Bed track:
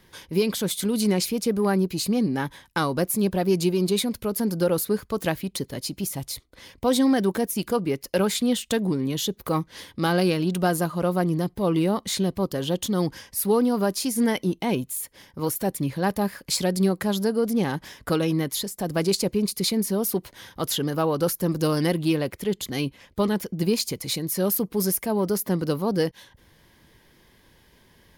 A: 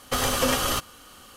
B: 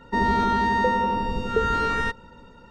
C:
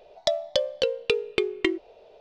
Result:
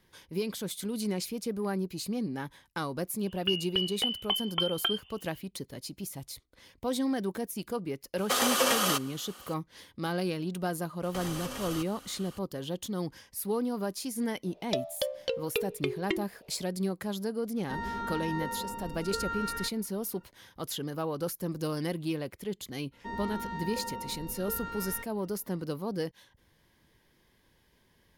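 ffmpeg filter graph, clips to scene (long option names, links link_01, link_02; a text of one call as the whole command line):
ffmpeg -i bed.wav -i cue0.wav -i cue1.wav -i cue2.wav -filter_complex "[3:a]asplit=2[link_01][link_02];[1:a]asplit=2[link_03][link_04];[2:a]asplit=2[link_05][link_06];[0:a]volume=-10dB[link_07];[link_01]lowpass=frequency=3000:width_type=q:width=0.5098,lowpass=frequency=3000:width_type=q:width=0.6013,lowpass=frequency=3000:width_type=q:width=0.9,lowpass=frequency=3000:width_type=q:width=2.563,afreqshift=-3500[link_08];[link_03]highpass=350[link_09];[link_04]acompressor=threshold=-32dB:ratio=6:attack=3.2:release=140:knee=1:detection=peak[link_10];[link_05]equalizer=frequency=1500:width_type=o:width=0.25:gain=8.5[link_11];[link_08]atrim=end=2.2,asetpts=PTS-STARTPTS,volume=-6dB,afade=type=in:duration=0.004:curve=hsin,afade=type=out:start_time=2.196:duration=0.004:curve=hsin,adelay=3200[link_12];[link_09]atrim=end=1.36,asetpts=PTS-STARTPTS,volume=-1.5dB,afade=type=in:duration=0.004:curve=hsin,afade=type=out:start_time=1.356:duration=0.004:curve=hsin,adelay=360738S[link_13];[link_10]atrim=end=1.36,asetpts=PTS-STARTPTS,volume=-4dB,afade=type=in:duration=0.004:curve=hsin,afade=type=out:start_time=1.356:duration=0.004:curve=hsin,adelay=11030[link_14];[link_02]atrim=end=2.2,asetpts=PTS-STARTPTS,volume=-7.5dB,afade=type=in:duration=0.004:curve=hsin,afade=type=out:start_time=2.196:duration=0.004:curve=hsin,adelay=14460[link_15];[link_11]atrim=end=2.7,asetpts=PTS-STARTPTS,volume=-15dB,afade=type=in:duration=0.004:curve=hsin,afade=type=out:start_time=2.696:duration=0.004:curve=hsin,adelay=17570[link_16];[link_06]atrim=end=2.7,asetpts=PTS-STARTPTS,volume=-16.5dB,afade=type=in:duration=0.004:curve=hsin,afade=type=out:start_time=2.696:duration=0.004:curve=hsin,adelay=1010772S[link_17];[link_07][link_12][link_13][link_14][link_15][link_16][link_17]amix=inputs=7:normalize=0" out.wav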